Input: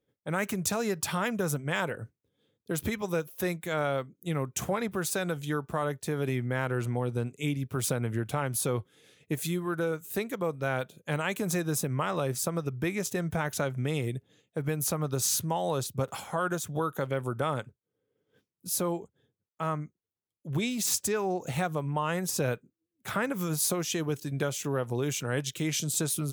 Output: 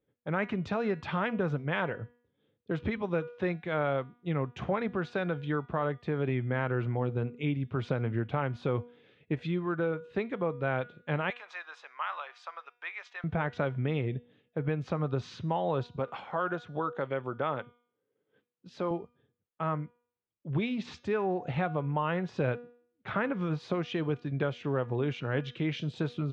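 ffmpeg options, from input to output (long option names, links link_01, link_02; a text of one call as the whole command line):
ffmpeg -i in.wav -filter_complex "[0:a]asettb=1/sr,asplit=3[link_01][link_02][link_03];[link_01]atrim=end=11.304[link_04];[link_02]atrim=start=11.3:end=13.24,asetpts=PTS-STARTPTS,afade=type=in:duration=0.004:curve=qsin,afade=type=out:start_time=1.936:duration=0.004:curve=qsin,highpass=frequency=930:width=0.5412,highpass=frequency=930:width=1.3066[link_05];[link_03]atrim=start=13.236[link_06];[link_04][link_05]acrossfade=duration=0.004:curve1=hsin:curve2=qsin[link_07];[link_07][link_06]acrossfade=duration=0.004:curve1=qsin:curve2=hsin,asettb=1/sr,asplit=3[link_08][link_09][link_10];[link_08]atrim=end=15.964[link_11];[link_09]atrim=start=15.96:end=18.91,asetpts=PTS-STARTPTS,afade=type=in:duration=0.004:curve=qsin,afade=type=out:start_time=2.946:duration=0.004:curve=qsin,highpass=frequency=280:poles=1[link_12];[link_10]atrim=start=18.906[link_13];[link_11][link_12]acrossfade=duration=0.004:curve1=hsin:curve2=qsin[link_14];[link_14][link_13]acrossfade=duration=0.004:curve1=qsin:curve2=hsin,lowpass=frequency=3500:width=0.5412,lowpass=frequency=3500:width=1.3066,aemphasis=mode=reproduction:type=50kf,bandreject=frequency=241.3:width_type=h:width=4,bandreject=frequency=482.6:width_type=h:width=4,bandreject=frequency=723.9:width_type=h:width=4,bandreject=frequency=965.2:width_type=h:width=4,bandreject=frequency=1206.5:width_type=h:width=4,bandreject=frequency=1447.8:width_type=h:width=4,bandreject=frequency=1689.1:width_type=h:width=4,bandreject=frequency=1930.4:width_type=h:width=4,bandreject=frequency=2171.7:width_type=h:width=4,bandreject=frequency=2413:width_type=h:width=4,bandreject=frequency=2654.3:width_type=h:width=4,bandreject=frequency=2895.6:width_type=h:width=4,bandreject=frequency=3136.9:width_type=h:width=4,bandreject=frequency=3378.2:width_type=h:width=4,bandreject=frequency=3619.5:width_type=h:width=4,bandreject=frequency=3860.8:width_type=h:width=4,bandreject=frequency=4102.1:width_type=h:width=4,bandreject=frequency=4343.4:width_type=h:width=4,bandreject=frequency=4584.7:width_type=h:width=4,bandreject=frequency=4826:width_type=h:width=4,bandreject=frequency=5067.3:width_type=h:width=4,bandreject=frequency=5308.6:width_type=h:width=4,bandreject=frequency=5549.9:width_type=h:width=4,bandreject=frequency=5791.2:width_type=h:width=4,bandreject=frequency=6032.5:width_type=h:width=4,bandreject=frequency=6273.8:width_type=h:width=4,bandreject=frequency=6515.1:width_type=h:width=4,bandreject=frequency=6756.4:width_type=h:width=4" out.wav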